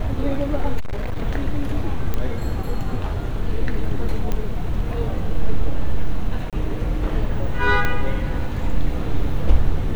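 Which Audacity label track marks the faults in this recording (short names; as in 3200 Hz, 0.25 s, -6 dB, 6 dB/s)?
0.790000	1.220000	clipped -20 dBFS
2.140000	2.140000	pop -10 dBFS
4.320000	4.320000	pop -11 dBFS
6.500000	6.530000	gap 27 ms
7.850000	7.850000	pop -8 dBFS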